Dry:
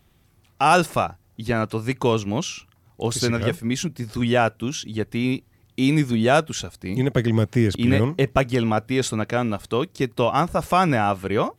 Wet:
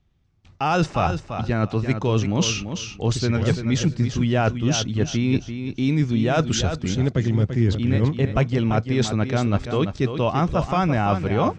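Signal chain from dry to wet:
noise gate with hold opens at −48 dBFS
Butterworth low-pass 6,800 Hz 36 dB per octave
low-shelf EQ 190 Hz +10.5 dB
reversed playback
downward compressor 6 to 1, threshold −26 dBFS, peak gain reduction 16.5 dB
reversed playback
repeating echo 339 ms, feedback 21%, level −8.5 dB
level +8 dB

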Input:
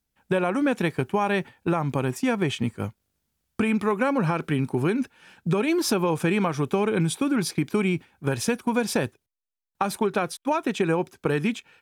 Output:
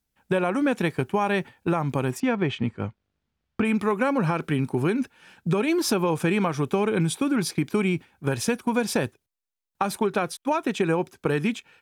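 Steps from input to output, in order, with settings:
0:02.20–0:03.65: low-pass filter 3,400 Hz 12 dB per octave

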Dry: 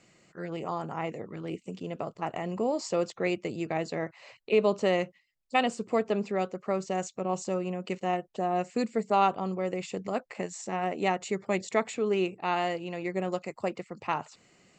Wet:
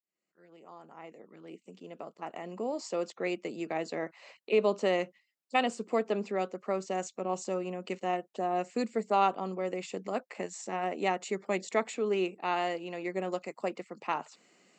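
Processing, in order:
fade in at the beginning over 3.97 s
high-pass filter 200 Hz 24 dB per octave
level −2 dB

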